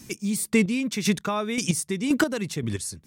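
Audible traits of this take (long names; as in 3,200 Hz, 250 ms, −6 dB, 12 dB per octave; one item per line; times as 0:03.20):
chopped level 1.9 Hz, depth 60%, duty 25%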